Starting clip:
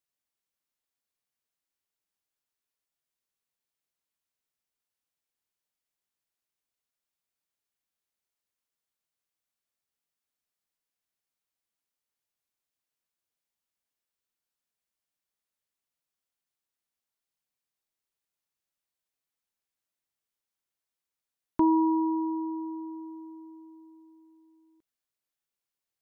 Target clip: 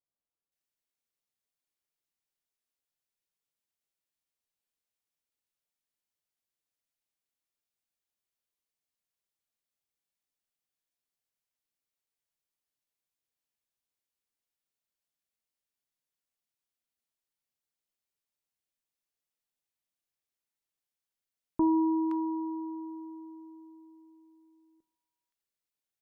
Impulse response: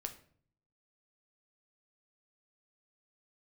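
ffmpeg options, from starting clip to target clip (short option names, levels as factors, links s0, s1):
-filter_complex "[0:a]acrossover=split=1200[s0][s1];[s1]adelay=520[s2];[s0][s2]amix=inputs=2:normalize=0,asplit=2[s3][s4];[1:a]atrim=start_sample=2205[s5];[s4][s5]afir=irnorm=-1:irlink=0,volume=0.75[s6];[s3][s6]amix=inputs=2:normalize=0,volume=0.473"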